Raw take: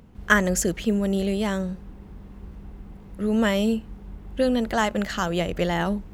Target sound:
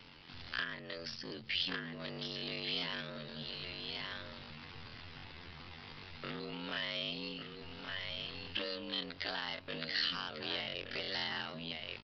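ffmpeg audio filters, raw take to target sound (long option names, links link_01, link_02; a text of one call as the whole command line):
ffmpeg -i in.wav -filter_complex "[0:a]bandreject=frequency=60:width_type=h:width=6,bandreject=frequency=120:width_type=h:width=6,bandreject=frequency=180:width_type=h:width=6,aeval=exprs='val(0)*sin(2*PI*45*n/s)':channel_layout=same,acompressor=threshold=-33dB:ratio=12,tiltshelf=frequency=1200:gain=-6,aecho=1:1:586:0.335,acrossover=split=470[link_01][link_02];[link_02]acompressor=threshold=-47dB:ratio=3[link_03];[link_01][link_03]amix=inputs=2:normalize=0,asoftclip=type=tanh:threshold=-37.5dB,lowshelf=frequency=380:gain=-10,atempo=0.51,crystalizer=i=6.5:c=0,aresample=11025,aresample=44100,volume=5.5dB" out.wav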